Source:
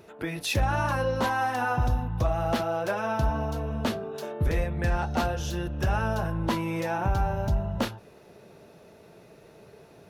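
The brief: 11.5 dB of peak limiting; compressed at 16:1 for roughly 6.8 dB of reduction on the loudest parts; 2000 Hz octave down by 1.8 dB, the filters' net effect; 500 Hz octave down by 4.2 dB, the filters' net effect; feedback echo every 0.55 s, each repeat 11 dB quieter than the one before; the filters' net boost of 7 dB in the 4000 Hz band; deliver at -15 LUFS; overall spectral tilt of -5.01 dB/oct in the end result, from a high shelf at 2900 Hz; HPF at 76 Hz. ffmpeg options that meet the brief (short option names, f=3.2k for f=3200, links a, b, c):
-af "highpass=76,equalizer=f=500:t=o:g=-5.5,equalizer=f=2k:t=o:g=-5.5,highshelf=f=2.9k:g=3.5,equalizer=f=4k:t=o:g=7.5,acompressor=threshold=-29dB:ratio=16,alimiter=level_in=6dB:limit=-24dB:level=0:latency=1,volume=-6dB,aecho=1:1:550|1100|1650:0.282|0.0789|0.0221,volume=23.5dB"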